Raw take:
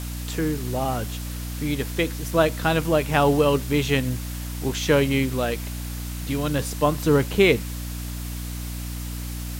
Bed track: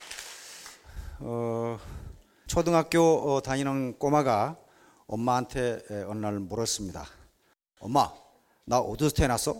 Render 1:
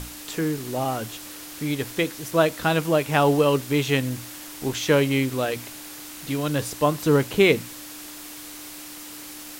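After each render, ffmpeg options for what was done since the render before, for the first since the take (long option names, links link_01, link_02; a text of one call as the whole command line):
ffmpeg -i in.wav -af "bandreject=frequency=60:width_type=h:width=6,bandreject=frequency=120:width_type=h:width=6,bandreject=frequency=180:width_type=h:width=6,bandreject=frequency=240:width_type=h:width=6" out.wav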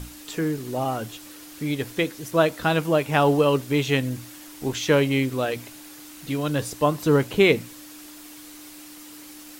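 ffmpeg -i in.wav -af "afftdn=noise_reduction=6:noise_floor=-40" out.wav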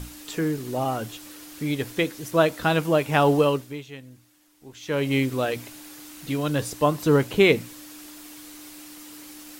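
ffmpeg -i in.wav -filter_complex "[0:a]asplit=3[link_01][link_02][link_03];[link_01]atrim=end=3.93,asetpts=PTS-STARTPTS,afade=type=out:start_time=3.44:duration=0.49:curve=qua:silence=0.11885[link_04];[link_02]atrim=start=3.93:end=4.65,asetpts=PTS-STARTPTS,volume=-18.5dB[link_05];[link_03]atrim=start=4.65,asetpts=PTS-STARTPTS,afade=type=in:duration=0.49:curve=qua:silence=0.11885[link_06];[link_04][link_05][link_06]concat=n=3:v=0:a=1" out.wav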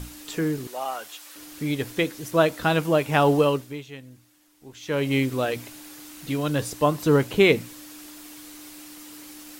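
ffmpeg -i in.wav -filter_complex "[0:a]asettb=1/sr,asplit=3[link_01][link_02][link_03];[link_01]atrim=end=0.674[link_04];[link_02]atrim=start=0.67:end=1.36,asetpts=PTS-STARTPTS,afade=type=in:duration=0.004:curve=qsin,afade=type=out:start_time=0.686:duration=0.004:curve=qsin,highpass=750[link_05];[link_03]atrim=start=1.356[link_06];[link_04][link_05]acrossfade=duration=0.004:curve1=hsin:curve2=qsin[link_07];[link_07][link_06]acrossfade=duration=0.004:curve1=qsin:curve2=hsin" out.wav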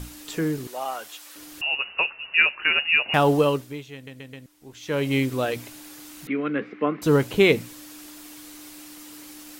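ffmpeg -i in.wav -filter_complex "[0:a]asettb=1/sr,asplit=3[link_01][link_02][link_03];[link_01]atrim=end=1.614[link_04];[link_02]atrim=start=1.61:end=3.14,asetpts=PTS-STARTPTS,afade=type=in:duration=0.004:curve=qsin,afade=type=out:start_time=1.526:duration=0.004:curve=qsin,lowpass=frequency=2600:width_type=q:width=0.5098,lowpass=frequency=2600:width_type=q:width=0.6013,lowpass=frequency=2600:width_type=q:width=0.9,lowpass=frequency=2600:width_type=q:width=2.563,afreqshift=-3000[link_05];[link_03]atrim=start=3.136[link_06];[link_04][link_05]acrossfade=duration=0.004:curve1=hsin:curve2=qsin[link_07];[link_07][link_06]acrossfade=duration=0.004:curve1=qsin:curve2=hsin,asettb=1/sr,asplit=3[link_08][link_09][link_10];[link_08]atrim=end=6.274[link_11];[link_09]atrim=start=6.27:end=7.02,asetpts=PTS-STARTPTS,afade=type=in:duration=0.004:curve=qsin,afade=type=out:start_time=0.746:duration=0.004:curve=qsin,highpass=frequency=210:width=0.5412,highpass=frequency=210:width=1.3066,equalizer=frequency=210:width_type=q:width=4:gain=8,equalizer=frequency=400:width_type=q:width=4:gain=4,equalizer=frequency=630:width_type=q:width=4:gain=-9,equalizer=frequency=930:width_type=q:width=4:gain=-10,equalizer=frequency=1300:width_type=q:width=4:gain=5,equalizer=frequency=2200:width_type=q:width=4:gain=10,lowpass=frequency=2300:width=0.5412,lowpass=frequency=2300:width=1.3066[link_12];[link_10]atrim=start=7.016[link_13];[link_11][link_12]acrossfade=duration=0.004:curve1=hsin:curve2=qsin[link_14];[link_14][link_13]acrossfade=duration=0.004:curve1=qsin:curve2=hsin,asplit=5[link_15][link_16][link_17][link_18][link_19];[link_15]atrim=end=4.072[link_20];[link_16]atrim=start=3.938:end=4.072[link_21];[link_17]atrim=start=3.938:end=4.072[link_22];[link_18]atrim=start=3.938:end=4.072[link_23];[link_19]atrim=start=4.458[link_24];[link_20][link_21]acrossfade=duration=0.004:curve1=hsin:curve2=hsin[link_25];[link_25][link_22]acrossfade=duration=0.004:curve1=hsin:curve2=hsin[link_26];[link_26][link_23]acrossfade=duration=0.004:curve1=hsin:curve2=hsin[link_27];[link_27][link_24]acrossfade=duration=0.004:curve1=hsin:curve2=hsin" out.wav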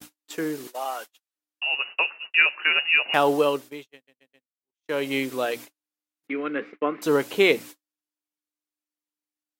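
ffmpeg -i in.wav -af "agate=range=-50dB:threshold=-36dB:ratio=16:detection=peak,highpass=320" out.wav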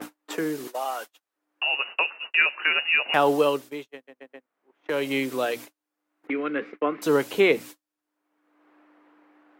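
ffmpeg -i in.wav -filter_complex "[0:a]acrossover=split=230|1800|2400[link_01][link_02][link_03][link_04];[link_02]acompressor=mode=upward:threshold=-26dB:ratio=2.5[link_05];[link_04]alimiter=level_in=1dB:limit=-24dB:level=0:latency=1:release=141,volume=-1dB[link_06];[link_01][link_05][link_03][link_06]amix=inputs=4:normalize=0" out.wav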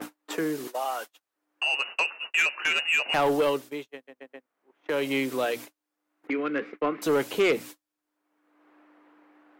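ffmpeg -i in.wav -af "asoftclip=type=tanh:threshold=-17dB" out.wav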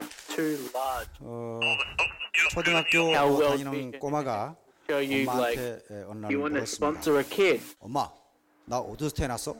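ffmpeg -i in.wav -i bed.wav -filter_complex "[1:a]volume=-5.5dB[link_01];[0:a][link_01]amix=inputs=2:normalize=0" out.wav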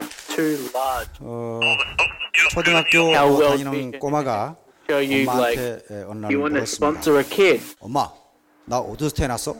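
ffmpeg -i in.wav -af "volume=7.5dB" out.wav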